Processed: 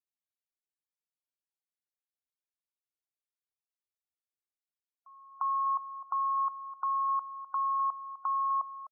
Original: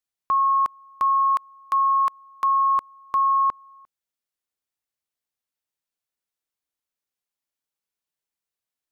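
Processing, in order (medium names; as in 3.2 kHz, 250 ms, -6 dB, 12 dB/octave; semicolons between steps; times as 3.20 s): reverse the whole clip; dynamic bell 1.3 kHz, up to -6 dB, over -34 dBFS, Q 0.78; loudest bins only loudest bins 32; delay 254 ms -13.5 dB; trim -5 dB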